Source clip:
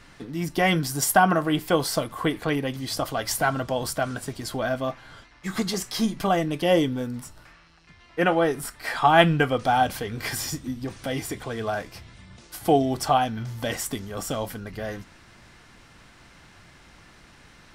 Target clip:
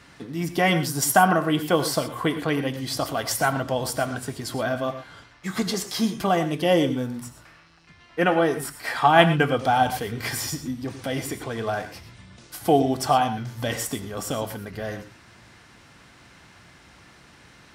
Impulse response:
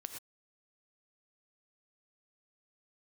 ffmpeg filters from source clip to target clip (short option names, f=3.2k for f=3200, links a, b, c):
-filter_complex "[0:a]highpass=64,asplit=2[a][b];[1:a]atrim=start_sample=2205[c];[b][c]afir=irnorm=-1:irlink=0,volume=4.5dB[d];[a][d]amix=inputs=2:normalize=0,volume=-5.5dB"